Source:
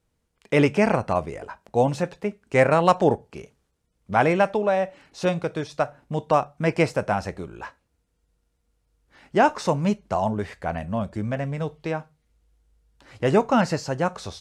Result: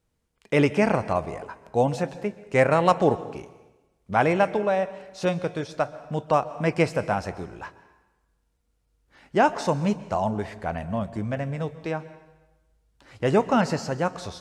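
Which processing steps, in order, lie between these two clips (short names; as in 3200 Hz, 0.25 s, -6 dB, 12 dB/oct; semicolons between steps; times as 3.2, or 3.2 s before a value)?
plate-style reverb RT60 1.1 s, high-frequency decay 0.9×, pre-delay 0.115 s, DRR 15.5 dB; gain -1.5 dB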